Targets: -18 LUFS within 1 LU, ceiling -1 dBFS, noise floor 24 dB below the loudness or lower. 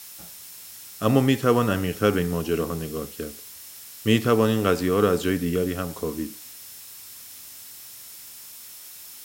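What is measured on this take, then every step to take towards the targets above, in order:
steady tone 5400 Hz; tone level -54 dBFS; noise floor -43 dBFS; noise floor target -48 dBFS; loudness -23.5 LUFS; peak -5.0 dBFS; loudness target -18.0 LUFS
-> notch 5400 Hz, Q 30; denoiser 6 dB, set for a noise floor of -43 dBFS; gain +5.5 dB; limiter -1 dBFS

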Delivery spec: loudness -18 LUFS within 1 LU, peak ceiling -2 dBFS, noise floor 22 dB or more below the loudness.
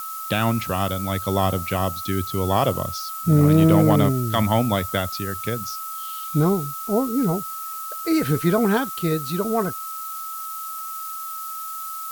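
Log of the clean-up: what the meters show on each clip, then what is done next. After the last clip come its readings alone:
steady tone 1300 Hz; tone level -31 dBFS; noise floor -32 dBFS; noise floor target -45 dBFS; loudness -22.5 LUFS; peak -7.0 dBFS; loudness target -18.0 LUFS
-> notch 1300 Hz, Q 30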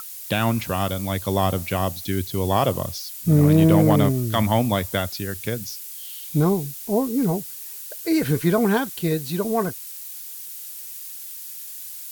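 steady tone none; noise floor -37 dBFS; noise floor target -44 dBFS
-> denoiser 7 dB, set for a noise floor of -37 dBFS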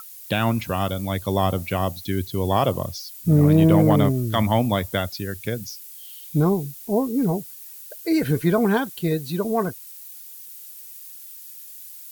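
noise floor -41 dBFS; noise floor target -44 dBFS
-> denoiser 6 dB, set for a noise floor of -41 dBFS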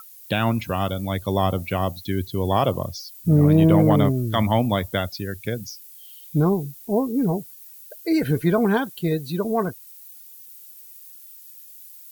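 noise floor -45 dBFS; loudness -22.0 LUFS; peak -7.5 dBFS; loudness target -18.0 LUFS
-> gain +4 dB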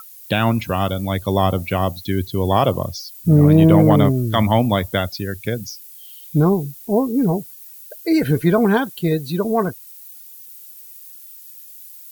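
loudness -18.0 LUFS; peak -3.5 dBFS; noise floor -41 dBFS

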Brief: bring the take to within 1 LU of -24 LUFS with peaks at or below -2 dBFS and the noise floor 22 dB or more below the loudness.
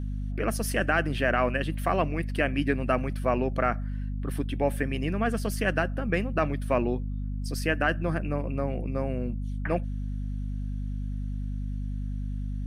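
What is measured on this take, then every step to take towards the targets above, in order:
hum 50 Hz; harmonics up to 250 Hz; hum level -29 dBFS; loudness -29.0 LUFS; peak -10.0 dBFS; loudness target -24.0 LUFS
-> notches 50/100/150/200/250 Hz; gain +5 dB

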